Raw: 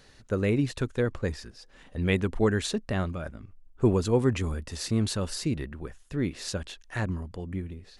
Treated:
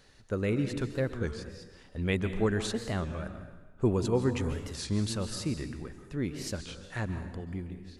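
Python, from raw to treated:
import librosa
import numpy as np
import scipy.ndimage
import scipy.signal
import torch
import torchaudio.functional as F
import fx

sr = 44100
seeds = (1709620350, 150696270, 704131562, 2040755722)

y = fx.rev_plate(x, sr, seeds[0], rt60_s=1.2, hf_ratio=0.8, predelay_ms=120, drr_db=8.5)
y = fx.record_warp(y, sr, rpm=33.33, depth_cents=160.0)
y = y * 10.0 ** (-4.0 / 20.0)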